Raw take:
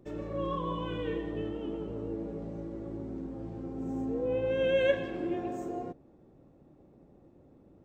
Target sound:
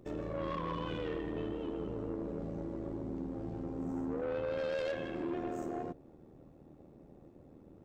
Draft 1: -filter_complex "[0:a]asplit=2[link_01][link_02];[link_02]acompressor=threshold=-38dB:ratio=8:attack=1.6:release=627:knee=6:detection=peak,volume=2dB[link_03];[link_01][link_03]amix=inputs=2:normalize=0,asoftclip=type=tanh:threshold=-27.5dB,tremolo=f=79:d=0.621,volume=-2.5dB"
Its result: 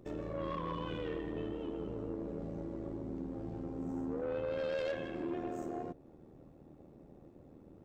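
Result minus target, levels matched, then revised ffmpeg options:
downward compressor: peak gain reduction +7 dB
-filter_complex "[0:a]asplit=2[link_01][link_02];[link_02]acompressor=threshold=-30dB:ratio=8:attack=1.6:release=627:knee=6:detection=peak,volume=2dB[link_03];[link_01][link_03]amix=inputs=2:normalize=0,asoftclip=type=tanh:threshold=-27.5dB,tremolo=f=79:d=0.621,volume=-2.5dB"

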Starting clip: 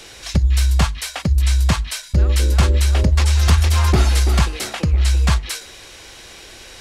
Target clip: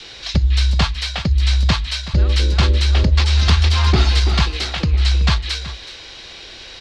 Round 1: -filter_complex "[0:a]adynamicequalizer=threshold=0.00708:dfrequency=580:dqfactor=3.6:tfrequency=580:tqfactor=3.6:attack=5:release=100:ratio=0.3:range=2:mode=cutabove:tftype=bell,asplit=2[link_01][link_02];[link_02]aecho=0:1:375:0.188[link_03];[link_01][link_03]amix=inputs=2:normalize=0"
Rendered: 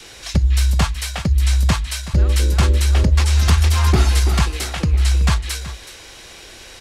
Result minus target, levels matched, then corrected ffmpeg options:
4,000 Hz band −5.0 dB
-filter_complex "[0:a]adynamicequalizer=threshold=0.00708:dfrequency=580:dqfactor=3.6:tfrequency=580:tqfactor=3.6:attack=5:release=100:ratio=0.3:range=2:mode=cutabove:tftype=bell,lowpass=frequency=4200:width_type=q:width=2.2,asplit=2[link_01][link_02];[link_02]aecho=0:1:375:0.188[link_03];[link_01][link_03]amix=inputs=2:normalize=0"

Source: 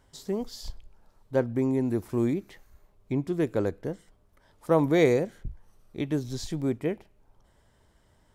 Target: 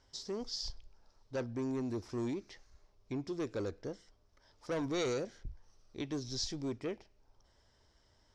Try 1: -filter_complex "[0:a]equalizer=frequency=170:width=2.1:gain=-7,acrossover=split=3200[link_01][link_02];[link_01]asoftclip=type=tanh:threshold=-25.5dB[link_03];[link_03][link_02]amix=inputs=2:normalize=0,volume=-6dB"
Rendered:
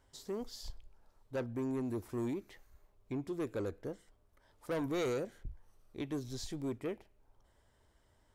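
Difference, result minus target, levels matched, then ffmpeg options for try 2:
4,000 Hz band −7.5 dB
-filter_complex "[0:a]lowpass=frequency=5400:width_type=q:width=4.3,equalizer=frequency=170:width=2.1:gain=-7,acrossover=split=3200[link_01][link_02];[link_01]asoftclip=type=tanh:threshold=-25.5dB[link_03];[link_03][link_02]amix=inputs=2:normalize=0,volume=-6dB"

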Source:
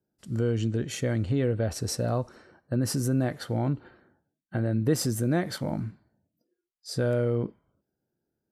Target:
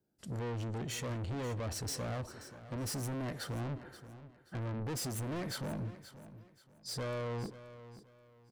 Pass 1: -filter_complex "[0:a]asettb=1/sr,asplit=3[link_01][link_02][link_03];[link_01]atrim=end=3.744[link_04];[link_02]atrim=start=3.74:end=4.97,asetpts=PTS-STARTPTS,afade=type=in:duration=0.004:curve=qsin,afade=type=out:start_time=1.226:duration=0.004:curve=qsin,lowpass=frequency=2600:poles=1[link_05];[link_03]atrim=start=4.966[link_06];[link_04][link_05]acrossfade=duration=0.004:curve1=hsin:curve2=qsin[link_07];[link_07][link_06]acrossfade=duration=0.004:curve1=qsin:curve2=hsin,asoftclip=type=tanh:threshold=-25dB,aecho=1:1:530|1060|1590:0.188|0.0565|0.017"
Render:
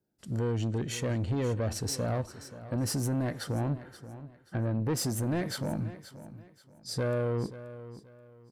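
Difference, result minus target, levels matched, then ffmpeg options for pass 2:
soft clipping: distortion −7 dB
-filter_complex "[0:a]asettb=1/sr,asplit=3[link_01][link_02][link_03];[link_01]atrim=end=3.744[link_04];[link_02]atrim=start=3.74:end=4.97,asetpts=PTS-STARTPTS,afade=type=in:duration=0.004:curve=qsin,afade=type=out:start_time=1.226:duration=0.004:curve=qsin,lowpass=frequency=2600:poles=1[link_05];[link_03]atrim=start=4.966[link_06];[link_04][link_05]acrossfade=duration=0.004:curve1=hsin:curve2=qsin[link_07];[link_07][link_06]acrossfade=duration=0.004:curve1=qsin:curve2=hsin,asoftclip=type=tanh:threshold=-36dB,aecho=1:1:530|1060|1590:0.188|0.0565|0.017"

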